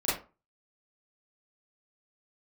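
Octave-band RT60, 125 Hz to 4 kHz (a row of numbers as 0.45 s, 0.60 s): 0.35 s, 0.30 s, 0.35 s, 0.35 s, 0.25 s, 0.20 s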